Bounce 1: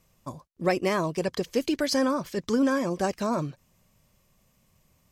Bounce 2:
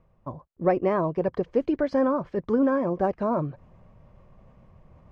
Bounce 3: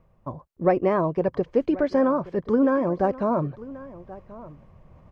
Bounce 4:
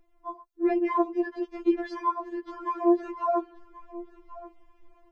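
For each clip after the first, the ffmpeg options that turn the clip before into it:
-af "lowpass=1000,equalizer=f=230:t=o:w=1.6:g=-4.5,areverse,acompressor=mode=upward:threshold=0.00501:ratio=2.5,areverse,volume=1.78"
-af "aecho=1:1:1082:0.119,volume=1.26"
-af "afftfilt=real='re*4*eq(mod(b,16),0)':imag='im*4*eq(mod(b,16),0)':win_size=2048:overlap=0.75"

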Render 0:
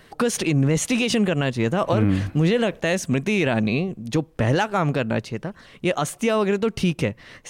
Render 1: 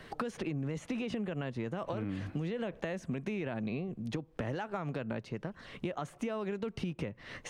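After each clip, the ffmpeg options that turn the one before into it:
-filter_complex "[0:a]acrossover=split=120|2200[s0][s1][s2];[s0]acompressor=threshold=0.0126:ratio=4[s3];[s1]acompressor=threshold=0.0794:ratio=4[s4];[s2]acompressor=threshold=0.00891:ratio=4[s5];[s3][s4][s5]amix=inputs=3:normalize=0,highshelf=f=6900:g=-11.5,acompressor=threshold=0.0141:ratio=3"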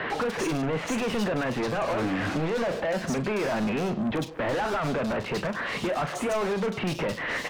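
-filter_complex "[0:a]asplit=2[s0][s1];[s1]highpass=f=720:p=1,volume=70.8,asoftclip=type=tanh:threshold=0.1[s2];[s0][s2]amix=inputs=2:normalize=0,lowpass=f=2600:p=1,volume=0.501,asplit=2[s3][s4];[s4]adelay=38,volume=0.282[s5];[s3][s5]amix=inputs=2:normalize=0,acrossover=split=3200[s6][s7];[s7]adelay=100[s8];[s6][s8]amix=inputs=2:normalize=0"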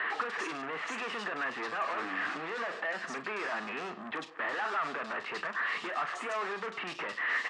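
-af "highpass=420,equalizer=f=550:t=q:w=4:g=-8,equalizer=f=1200:t=q:w=4:g=9,equalizer=f=1800:t=q:w=4:g=9,equalizer=f=2700:t=q:w=4:g=3,equalizer=f=6200:t=q:w=4:g=-4,lowpass=f=7900:w=0.5412,lowpass=f=7900:w=1.3066,volume=0.422"

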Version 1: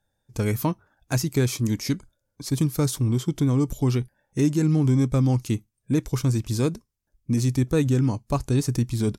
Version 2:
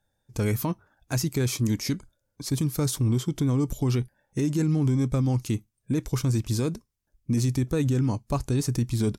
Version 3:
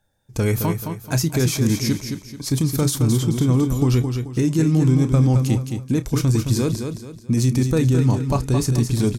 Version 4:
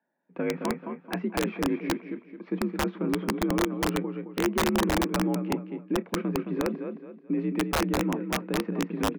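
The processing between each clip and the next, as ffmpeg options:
-af "alimiter=limit=0.141:level=0:latency=1:release=26"
-filter_complex "[0:a]asplit=2[s0][s1];[s1]adelay=31,volume=0.2[s2];[s0][s2]amix=inputs=2:normalize=0,asplit=2[s3][s4];[s4]aecho=0:1:217|434|651|868:0.473|0.166|0.058|0.0203[s5];[s3][s5]amix=inputs=2:normalize=0,volume=1.88"
-af "highpass=f=160:t=q:w=0.5412,highpass=f=160:t=q:w=1.307,lowpass=f=2400:t=q:w=0.5176,lowpass=f=2400:t=q:w=0.7071,lowpass=f=2400:t=q:w=1.932,afreqshift=53,aeval=exprs='(mod(3.98*val(0)+1,2)-1)/3.98':c=same,volume=0.501"

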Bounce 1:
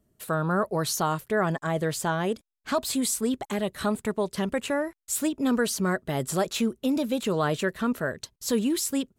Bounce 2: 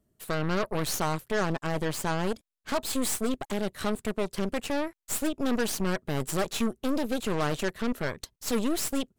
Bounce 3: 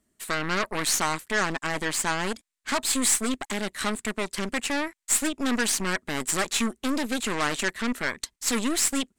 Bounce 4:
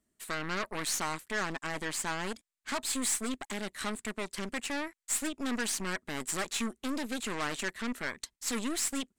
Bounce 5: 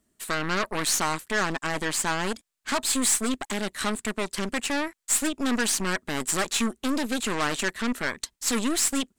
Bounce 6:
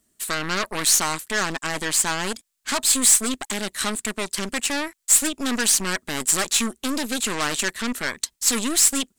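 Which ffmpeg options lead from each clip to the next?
-af "aeval=exprs='0.211*(cos(1*acos(clip(val(0)/0.211,-1,1)))-cos(1*PI/2))+0.0335*(cos(8*acos(clip(val(0)/0.211,-1,1)))-cos(8*PI/2))':c=same,volume=0.668"
-af "equalizer=f=125:t=o:w=1:g=-9,equalizer=f=250:t=o:w=1:g=6,equalizer=f=500:t=o:w=1:g=-3,equalizer=f=1000:t=o:w=1:g=4,equalizer=f=2000:t=o:w=1:g=10,equalizer=f=4000:t=o:w=1:g=4,equalizer=f=8000:t=o:w=1:g=12,volume=0.794"
-af "asoftclip=type=tanh:threshold=0.2,volume=0.447"
-af "equalizer=f=2100:w=3.9:g=-2.5,volume=2.51"
-af "highshelf=f=3200:g=9"

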